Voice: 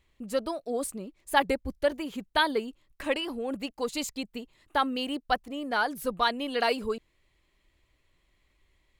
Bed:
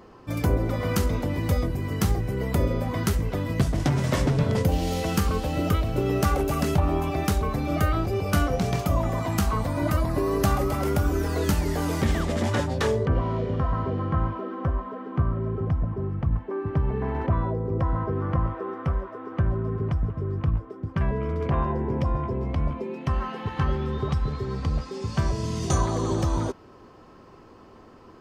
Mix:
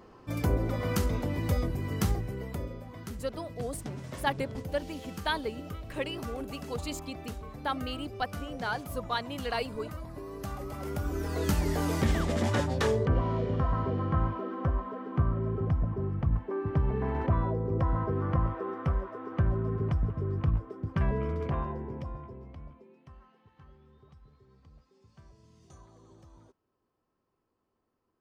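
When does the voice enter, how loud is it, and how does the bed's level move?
2.90 s, −6.0 dB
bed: 0:02.08 −4.5 dB
0:02.83 −17 dB
0:10.36 −17 dB
0:11.62 −3 dB
0:21.21 −3 dB
0:23.44 −31 dB

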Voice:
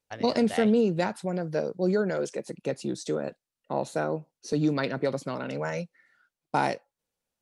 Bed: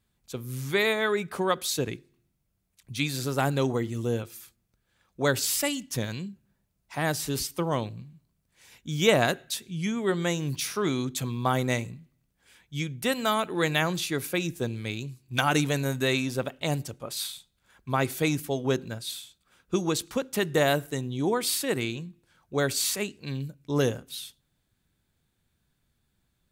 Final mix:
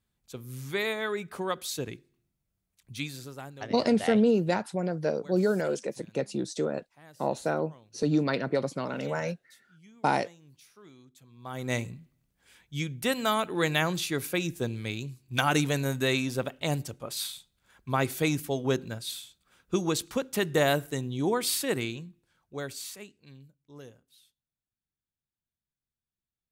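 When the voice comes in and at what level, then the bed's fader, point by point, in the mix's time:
3.50 s, 0.0 dB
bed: 0:02.98 −5.5 dB
0:03.80 −26 dB
0:11.27 −26 dB
0:11.76 −1 dB
0:21.72 −1 dB
0:23.82 −23 dB

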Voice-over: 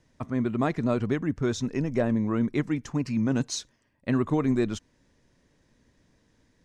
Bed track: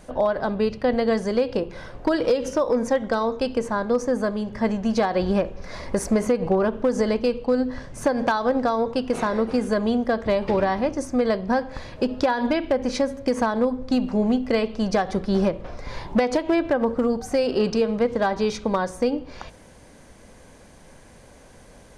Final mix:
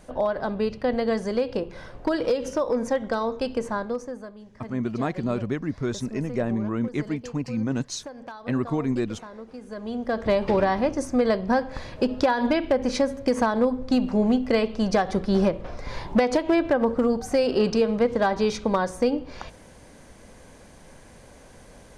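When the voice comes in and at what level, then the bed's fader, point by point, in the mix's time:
4.40 s, −1.0 dB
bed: 0:03.76 −3 dB
0:04.34 −18 dB
0:09.60 −18 dB
0:10.25 0 dB

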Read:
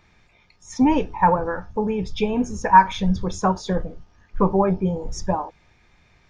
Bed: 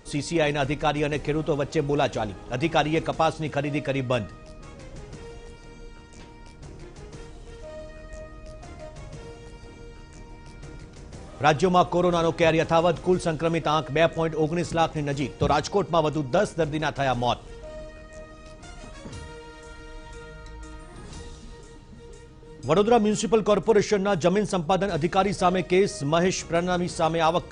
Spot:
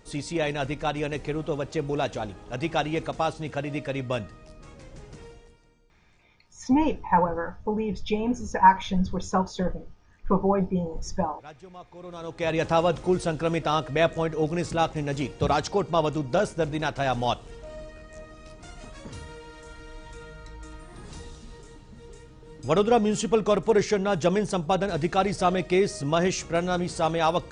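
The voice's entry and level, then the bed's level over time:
5.90 s, −4.0 dB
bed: 0:05.25 −4 dB
0:05.99 −25.5 dB
0:11.87 −25.5 dB
0:12.64 −1.5 dB

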